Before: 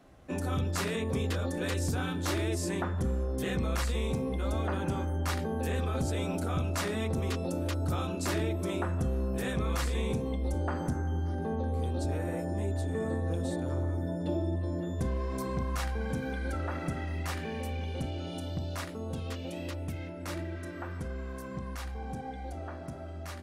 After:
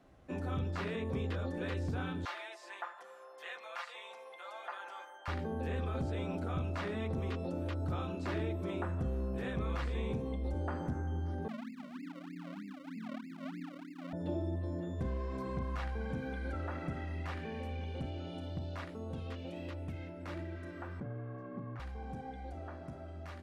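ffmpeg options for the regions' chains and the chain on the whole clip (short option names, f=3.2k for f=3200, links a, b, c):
-filter_complex "[0:a]asettb=1/sr,asplit=3[a][b][c];[a]atrim=end=2.254[d];[b]atrim=start=2.25:end=5.28,asetpts=PTS-STARTPTS,afade=t=in:d=0.004:c=qsin,afade=t=out:st=3.026:d=0.004:c=qsin,highpass=f=730:w=0.5412,highpass=f=730:w=1.3066,aecho=1:1:5.8:0.52,atrim=end_sample=133623[e];[c]atrim=start=5.276[f];[d][e]acrossfade=d=0.004:c1=hsin:c2=qsin[g];[g][f]acrossfade=d=0.004:c1=qsin:c2=hsin,asettb=1/sr,asplit=3[h][i][j];[h]atrim=end=11.484[k];[i]atrim=start=11.48:end=14.13,asetpts=PTS-STARTPTS,afade=t=in:d=0.004:c=qsin,afade=t=out:st=2.646:d=0.004:c=qsin,asuperpass=centerf=230:order=8:qfactor=1.9,acrusher=samples=36:mix=1:aa=0.000001:lfo=1:lforange=36:lforate=3.2[l];[j]atrim=start=14.126[m];[k][l]acrossfade=d=0.004:c1=hsin:c2=qsin[n];[n][m]acrossfade=d=0.004:c1=qsin:c2=hsin,asettb=1/sr,asplit=3[o][p][q];[o]atrim=end=21.004[r];[p]atrim=start=21:end=21.8,asetpts=PTS-STARTPTS,afade=t=in:d=0.004:c=qsin,afade=t=out:st=0.796:d=0.004:c=qsin,lowpass=1.5k,afreqshift=53[s];[q]atrim=start=21.796[t];[r][s]acrossfade=d=0.004:c1=hsin:c2=qsin[u];[u][t]acrossfade=d=0.004:c1=qsin:c2=hsin,acrossover=split=4000[v][w];[w]acompressor=threshold=-59dB:ratio=4:attack=1:release=60[x];[v][x]amix=inputs=2:normalize=0,highshelf=f=6.8k:g=-8,volume=-5dB"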